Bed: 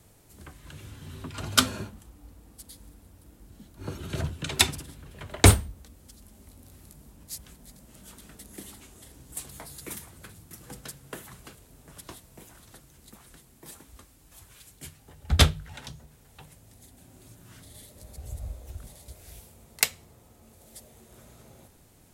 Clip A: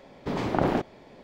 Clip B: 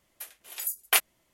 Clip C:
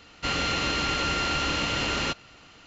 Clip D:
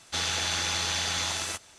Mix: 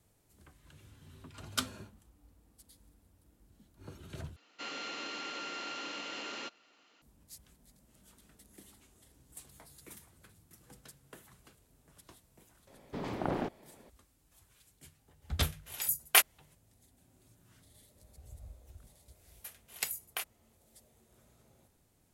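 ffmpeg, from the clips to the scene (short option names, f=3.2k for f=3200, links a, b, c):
-filter_complex "[2:a]asplit=2[a][b];[0:a]volume=-13dB[c];[3:a]highpass=f=240:w=0.5412,highpass=f=240:w=1.3066[d];[b]acompressor=threshold=-27dB:ratio=6:attack=3.2:release=140:knee=1:detection=peak[e];[c]asplit=2[f][g];[f]atrim=end=4.364[h];[d]atrim=end=2.66,asetpts=PTS-STARTPTS,volume=-14dB[i];[g]atrim=start=7.016[j];[1:a]atrim=end=1.23,asetpts=PTS-STARTPTS,volume=-9.5dB,afade=t=in:d=0.004:c=hsin,afade=t=out:st=1.226:d=0.004:c=hsin,adelay=12670[k];[a]atrim=end=1.33,asetpts=PTS-STARTPTS,volume=-0.5dB,afade=t=in:d=0.004:c=hsin,afade=t=out:st=1.326:d=0.004:c=hsin,adelay=15220[l];[e]atrim=end=1.33,asetpts=PTS-STARTPTS,volume=-6dB,afade=t=in:d=0.004:c=hsin,afade=t=out:st=1.326:d=0.004:c=hsin,adelay=848484S[m];[h][i]acrossfade=d=0.004:c1=hsin:c2=hsin[n];[n][j]acrossfade=d=0.004:c1=hsin:c2=hsin[o];[o][k][l][m]amix=inputs=4:normalize=0"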